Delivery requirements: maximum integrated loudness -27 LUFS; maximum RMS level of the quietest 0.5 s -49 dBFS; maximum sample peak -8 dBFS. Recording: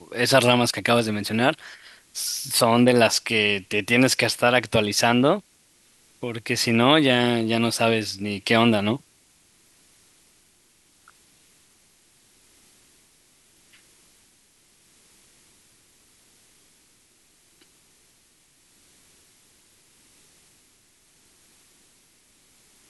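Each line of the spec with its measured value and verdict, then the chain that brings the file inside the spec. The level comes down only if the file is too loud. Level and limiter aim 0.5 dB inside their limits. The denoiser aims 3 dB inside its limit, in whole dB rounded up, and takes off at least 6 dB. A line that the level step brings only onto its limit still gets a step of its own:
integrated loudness -20.5 LUFS: fail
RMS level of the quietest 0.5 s -60 dBFS: OK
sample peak -2.5 dBFS: fail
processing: gain -7 dB

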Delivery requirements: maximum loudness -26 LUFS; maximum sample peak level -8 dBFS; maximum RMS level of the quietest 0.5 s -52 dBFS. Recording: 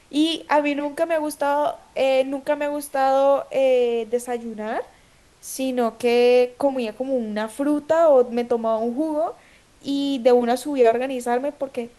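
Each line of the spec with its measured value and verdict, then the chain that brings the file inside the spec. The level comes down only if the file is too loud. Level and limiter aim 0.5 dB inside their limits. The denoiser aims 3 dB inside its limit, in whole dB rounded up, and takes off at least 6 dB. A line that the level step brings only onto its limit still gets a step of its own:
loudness -21.5 LUFS: fail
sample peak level -5.0 dBFS: fail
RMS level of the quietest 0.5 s -54 dBFS: OK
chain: gain -5 dB

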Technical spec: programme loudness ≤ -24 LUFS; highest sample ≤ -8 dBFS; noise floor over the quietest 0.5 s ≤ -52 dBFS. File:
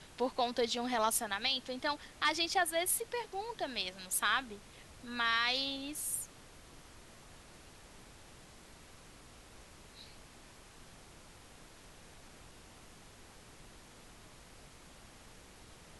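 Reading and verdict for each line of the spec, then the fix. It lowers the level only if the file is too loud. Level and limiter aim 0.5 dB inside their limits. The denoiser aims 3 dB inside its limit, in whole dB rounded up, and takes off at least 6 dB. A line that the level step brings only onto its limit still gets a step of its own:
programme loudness -34.0 LUFS: OK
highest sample -17.5 dBFS: OK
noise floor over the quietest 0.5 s -56 dBFS: OK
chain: none

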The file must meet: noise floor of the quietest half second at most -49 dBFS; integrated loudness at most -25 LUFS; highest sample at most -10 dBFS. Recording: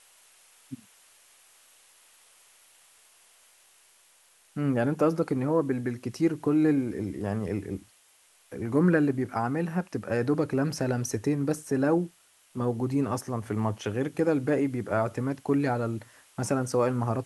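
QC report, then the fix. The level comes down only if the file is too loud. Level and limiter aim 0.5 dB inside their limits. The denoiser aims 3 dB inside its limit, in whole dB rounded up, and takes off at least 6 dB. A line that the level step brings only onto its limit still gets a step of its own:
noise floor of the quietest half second -62 dBFS: OK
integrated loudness -28.0 LUFS: OK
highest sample -11.0 dBFS: OK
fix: none

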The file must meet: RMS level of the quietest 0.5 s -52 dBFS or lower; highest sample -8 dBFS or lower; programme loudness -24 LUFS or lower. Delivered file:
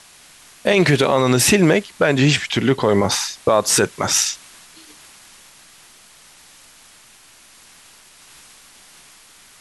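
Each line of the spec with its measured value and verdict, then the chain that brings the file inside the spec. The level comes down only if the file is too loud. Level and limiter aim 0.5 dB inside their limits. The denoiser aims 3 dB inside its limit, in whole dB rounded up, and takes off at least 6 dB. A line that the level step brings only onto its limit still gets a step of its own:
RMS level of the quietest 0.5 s -48 dBFS: fail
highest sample -4.0 dBFS: fail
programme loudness -16.5 LUFS: fail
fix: gain -8 dB

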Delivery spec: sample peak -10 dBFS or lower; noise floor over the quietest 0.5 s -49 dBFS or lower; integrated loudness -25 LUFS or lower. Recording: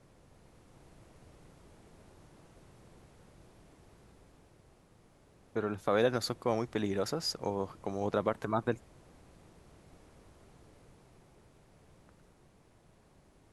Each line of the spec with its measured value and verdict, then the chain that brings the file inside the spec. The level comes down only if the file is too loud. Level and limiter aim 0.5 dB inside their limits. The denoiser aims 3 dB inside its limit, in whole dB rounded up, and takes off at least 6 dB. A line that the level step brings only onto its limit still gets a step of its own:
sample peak -14.5 dBFS: OK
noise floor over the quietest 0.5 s -63 dBFS: OK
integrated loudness -33.5 LUFS: OK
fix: none

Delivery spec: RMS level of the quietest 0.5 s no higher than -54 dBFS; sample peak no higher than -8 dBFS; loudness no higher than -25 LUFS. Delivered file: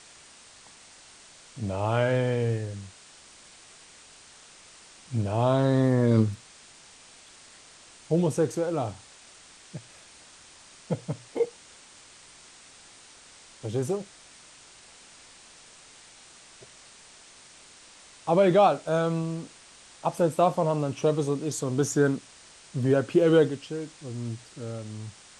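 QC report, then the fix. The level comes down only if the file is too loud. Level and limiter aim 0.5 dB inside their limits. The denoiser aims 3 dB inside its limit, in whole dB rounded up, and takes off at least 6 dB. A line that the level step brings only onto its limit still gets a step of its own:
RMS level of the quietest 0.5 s -52 dBFS: fail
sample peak -9.5 dBFS: OK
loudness -26.5 LUFS: OK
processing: denoiser 6 dB, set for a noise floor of -52 dBFS

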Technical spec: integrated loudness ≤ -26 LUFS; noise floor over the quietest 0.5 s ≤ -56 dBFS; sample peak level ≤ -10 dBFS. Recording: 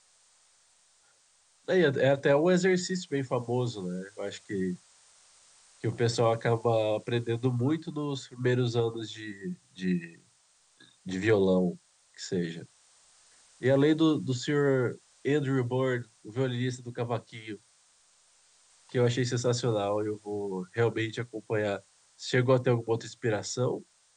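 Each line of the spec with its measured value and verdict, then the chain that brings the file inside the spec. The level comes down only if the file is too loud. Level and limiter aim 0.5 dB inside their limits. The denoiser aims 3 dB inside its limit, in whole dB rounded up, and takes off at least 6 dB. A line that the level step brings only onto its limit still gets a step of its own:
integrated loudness -29.0 LUFS: OK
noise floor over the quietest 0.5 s -66 dBFS: OK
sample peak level -11.0 dBFS: OK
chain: none

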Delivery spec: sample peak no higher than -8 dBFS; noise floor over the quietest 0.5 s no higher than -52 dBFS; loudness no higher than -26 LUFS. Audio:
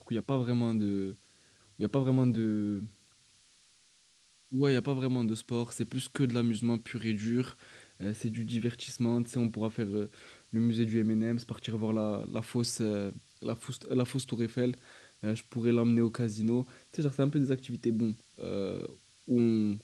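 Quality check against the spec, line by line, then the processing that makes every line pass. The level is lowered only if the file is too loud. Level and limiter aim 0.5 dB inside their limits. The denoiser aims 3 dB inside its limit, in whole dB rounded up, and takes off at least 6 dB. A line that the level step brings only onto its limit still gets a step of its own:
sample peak -15.0 dBFS: OK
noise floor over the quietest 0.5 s -65 dBFS: OK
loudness -32.0 LUFS: OK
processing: none

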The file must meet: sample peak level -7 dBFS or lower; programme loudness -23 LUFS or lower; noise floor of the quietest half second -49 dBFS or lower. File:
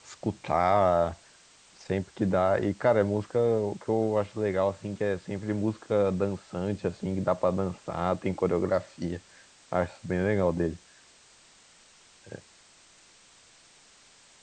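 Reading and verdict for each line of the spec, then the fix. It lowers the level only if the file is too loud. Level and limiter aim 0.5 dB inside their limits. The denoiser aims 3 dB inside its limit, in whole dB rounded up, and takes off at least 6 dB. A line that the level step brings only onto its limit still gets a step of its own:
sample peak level -10.5 dBFS: OK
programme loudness -28.5 LUFS: OK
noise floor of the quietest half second -57 dBFS: OK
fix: none

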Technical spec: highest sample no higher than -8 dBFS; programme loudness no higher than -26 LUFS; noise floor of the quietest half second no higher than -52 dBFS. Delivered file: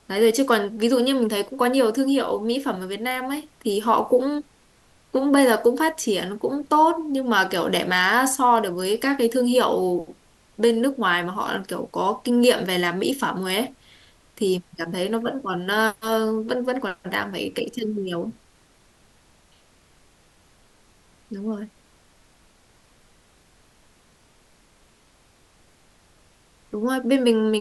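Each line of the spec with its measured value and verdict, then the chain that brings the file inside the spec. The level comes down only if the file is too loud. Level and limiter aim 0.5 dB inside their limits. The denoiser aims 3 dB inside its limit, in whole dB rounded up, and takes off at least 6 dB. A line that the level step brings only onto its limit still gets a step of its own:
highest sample -4.5 dBFS: fail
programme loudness -22.0 LUFS: fail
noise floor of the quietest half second -58 dBFS: OK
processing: gain -4.5 dB

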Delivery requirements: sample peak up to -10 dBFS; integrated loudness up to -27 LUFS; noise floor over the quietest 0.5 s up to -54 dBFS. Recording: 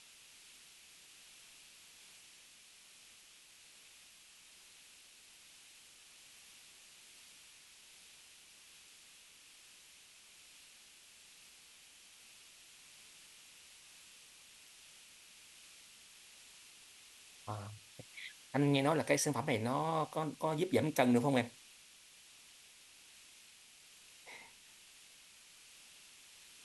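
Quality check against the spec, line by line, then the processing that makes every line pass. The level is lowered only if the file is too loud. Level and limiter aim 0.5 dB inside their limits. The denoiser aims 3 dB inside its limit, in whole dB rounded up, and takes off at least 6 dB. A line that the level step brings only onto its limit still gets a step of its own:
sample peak -16.0 dBFS: OK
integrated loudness -34.5 LUFS: OK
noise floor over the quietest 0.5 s -61 dBFS: OK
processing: none

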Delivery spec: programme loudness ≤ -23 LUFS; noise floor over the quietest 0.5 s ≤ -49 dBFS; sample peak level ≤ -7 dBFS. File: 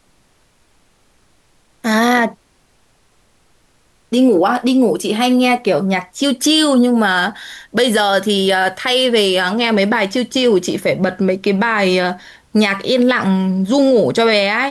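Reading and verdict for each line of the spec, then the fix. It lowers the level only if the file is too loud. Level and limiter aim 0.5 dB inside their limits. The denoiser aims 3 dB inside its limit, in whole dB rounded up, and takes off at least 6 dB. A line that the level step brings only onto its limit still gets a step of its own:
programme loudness -14.5 LUFS: fail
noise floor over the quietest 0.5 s -56 dBFS: OK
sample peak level -4.5 dBFS: fail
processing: gain -9 dB

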